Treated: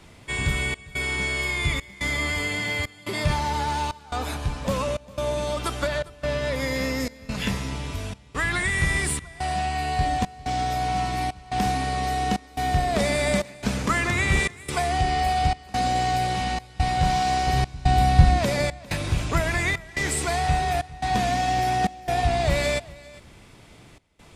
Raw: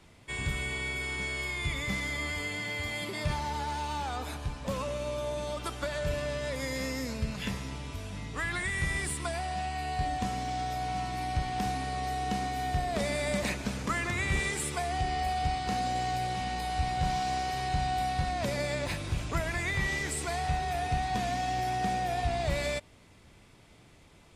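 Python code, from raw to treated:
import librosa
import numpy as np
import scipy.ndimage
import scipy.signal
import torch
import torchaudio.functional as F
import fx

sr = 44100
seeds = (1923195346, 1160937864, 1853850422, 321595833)

y = fx.peak_eq(x, sr, hz=8200.0, db=-7.0, octaves=0.91, at=(5.87, 7.0))
y = fx.step_gate(y, sr, bpm=142, pattern='xxxxxxx..x', floor_db=-24.0, edge_ms=4.5)
y = fx.low_shelf(y, sr, hz=230.0, db=12.0, at=(17.47, 18.39))
y = y + 10.0 ** (-21.0 / 20.0) * np.pad(y, (int(402 * sr / 1000.0), 0))[:len(y)]
y = F.gain(torch.from_numpy(y), 8.0).numpy()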